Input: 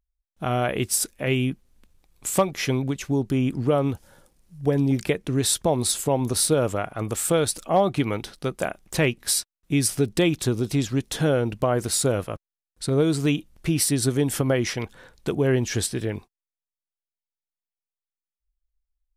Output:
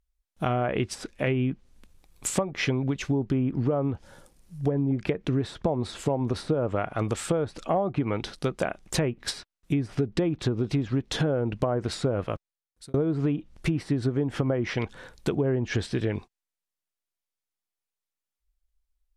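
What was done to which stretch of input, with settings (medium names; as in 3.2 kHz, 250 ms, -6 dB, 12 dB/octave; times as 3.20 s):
12.24–12.94 s: fade out
whole clip: low-pass that closes with the level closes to 1.2 kHz, closed at -17.5 dBFS; compression, threshold -25 dBFS; trim +3 dB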